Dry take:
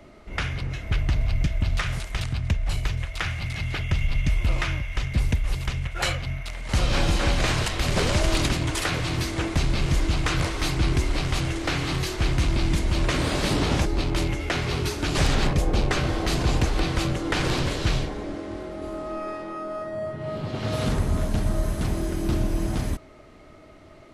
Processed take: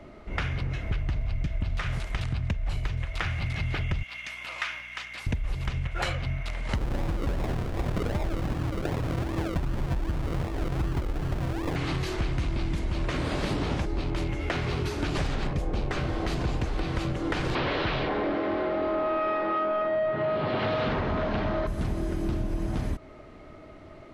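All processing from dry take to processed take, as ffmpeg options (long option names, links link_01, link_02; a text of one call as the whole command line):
ffmpeg -i in.wav -filter_complex "[0:a]asettb=1/sr,asplit=3[link_01][link_02][link_03];[link_01]atrim=end=4.034[link_04];[link_02]atrim=start=4.03:end=5.27,asetpts=PTS-STARTPTS,afade=type=in:duration=0.004:curve=qsin,afade=type=out:start_time=1.236:duration=0.004:curve=qsin,highpass=1200,aeval=exprs='val(0)+0.00141*(sin(2*PI*60*n/s)+sin(2*PI*2*60*n/s)/2+sin(2*PI*3*60*n/s)/3+sin(2*PI*4*60*n/s)/4+sin(2*PI*5*60*n/s)/5)':channel_layout=same[link_05];[link_03]atrim=start=5.266[link_06];[link_04][link_05]acrossfade=duration=0.004:curve1=hsin:curve2=qsin[link_07];[link_07][link_06]acrossfade=duration=0.004:curve1=qsin:curve2=hsin,asettb=1/sr,asplit=3[link_08][link_09][link_10];[link_08]atrim=end=6.754[link_11];[link_09]atrim=start=6.75:end=11.76,asetpts=PTS-STARTPTS,afade=type=in:duration=0.004:curve=qsin,afade=type=out:start_time=5.006:duration=0.004:curve=qsin,lowpass=frequency=1400:poles=1,acrusher=samples=41:mix=1:aa=0.000001:lfo=1:lforange=24.6:lforate=2.6[link_12];[link_10]atrim=start=11.756[link_13];[link_11][link_12]acrossfade=duration=0.004:curve1=hsin:curve2=qsin[link_14];[link_14][link_13]acrossfade=duration=0.004:curve1=qsin:curve2=hsin,asettb=1/sr,asplit=3[link_15][link_16][link_17];[link_15]atrim=end=17.554[link_18];[link_16]atrim=start=17.55:end=21.67,asetpts=PTS-STARTPTS,afade=type=in:duration=0.004:curve=qsin,afade=type=out:start_time=4.116:duration=0.004:curve=qsin,asplit=2[link_19][link_20];[link_20]highpass=frequency=720:poles=1,volume=22dB,asoftclip=type=tanh:threshold=-12.5dB[link_21];[link_19][link_21]amix=inputs=2:normalize=0,lowpass=frequency=3100:poles=1,volume=-6dB,lowpass=frequency=4400:width=0.5412,lowpass=frequency=4400:width=1.3066[link_22];[link_17]atrim=start=21.666[link_23];[link_18][link_22]acrossfade=duration=0.004:curve1=hsin:curve2=qsin[link_24];[link_24][link_23]acrossfade=duration=0.004:curve1=qsin:curve2=hsin,highshelf=frequency=4500:gain=-11.5,acompressor=threshold=-27dB:ratio=6,volume=2dB" out.wav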